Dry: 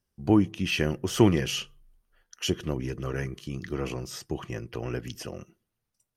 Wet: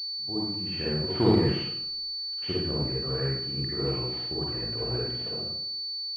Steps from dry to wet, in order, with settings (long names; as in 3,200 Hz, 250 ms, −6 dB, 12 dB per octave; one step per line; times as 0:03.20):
fade in at the beginning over 1.29 s
convolution reverb RT60 0.75 s, pre-delay 45 ms, DRR −6.5 dB
switching amplifier with a slow clock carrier 4,500 Hz
level −7 dB